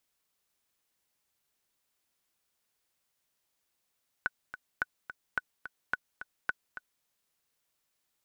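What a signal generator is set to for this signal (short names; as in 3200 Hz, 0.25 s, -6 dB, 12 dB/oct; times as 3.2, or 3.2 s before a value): metronome 215 bpm, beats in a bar 2, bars 5, 1490 Hz, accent 12 dB -15.5 dBFS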